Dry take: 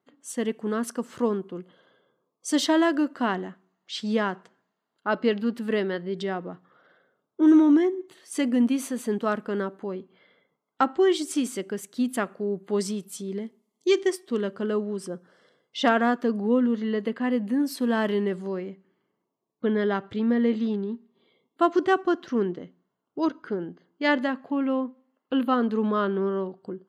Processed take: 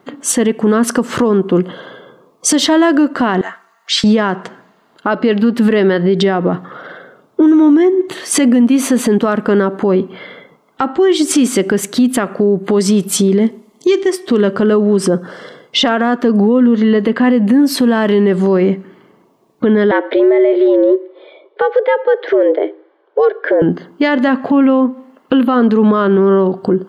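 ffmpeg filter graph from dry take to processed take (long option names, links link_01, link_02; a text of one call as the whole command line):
ffmpeg -i in.wav -filter_complex "[0:a]asettb=1/sr,asplit=3[link_01][link_02][link_03];[link_01]atrim=end=3.414[link_04];[link_02]atrim=start=3.41:end=4.04,asetpts=PTS-STARTPTS,afade=type=in:duration=0.004:curve=qsin,afade=type=out:start_time=0.626:duration=0.004:curve=qsin,highpass=1200,equalizer=frequency=3200:width_type=o:width=0.78:gain=-6.5,aecho=1:1:4.4:0.54,atrim=end_sample=27783[link_05];[link_03]atrim=start=4.036[link_06];[link_04][link_05]acrossfade=duration=0.004:curve1=hsin:curve2=qsin[link_07];[link_07][link_06]acrossfade=duration=0.004:curve1=qsin:curve2=hsin,asettb=1/sr,asplit=3[link_08][link_09][link_10];[link_08]atrim=end=19.914[link_11];[link_09]atrim=start=19.91:end=23.62,asetpts=PTS-STARTPTS,afade=type=in:duration=0.004:curve=qsin,afade=type=out:start_time=3.706:duration=0.004:curve=qsin,highpass=frequency=190:width=0.5412,highpass=frequency=190:width=1.3066,equalizer=frequency=620:width_type=q:width=4:gain=-5,equalizer=frequency=1100:width_type=q:width=4:gain=-10,equalizer=frequency=2600:width_type=q:width=4:gain=-6,lowpass=frequency=3100:width=0.5412,lowpass=frequency=3100:width=1.3066,afreqshift=140[link_12];[link_10]atrim=start=23.616[link_13];[link_11][link_12]acrossfade=duration=0.004:curve1=hsin:curve2=qsin[link_14];[link_14][link_13]acrossfade=duration=0.004:curve1=qsin:curve2=hsin,highshelf=frequency=4400:gain=-7.5,acompressor=threshold=-33dB:ratio=10,alimiter=level_in=31.5dB:limit=-1dB:release=50:level=0:latency=1,volume=-3dB" out.wav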